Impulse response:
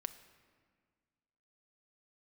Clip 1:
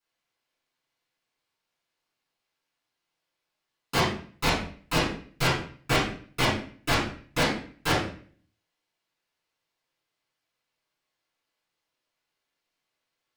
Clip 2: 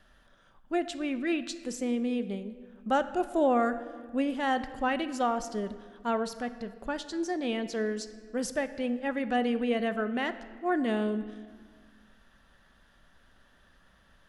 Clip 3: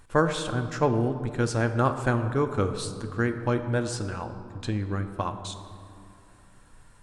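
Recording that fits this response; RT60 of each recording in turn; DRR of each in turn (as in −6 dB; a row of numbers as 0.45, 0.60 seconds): 2; 0.45, 1.8, 2.7 seconds; −12.0, 10.5, 6.5 decibels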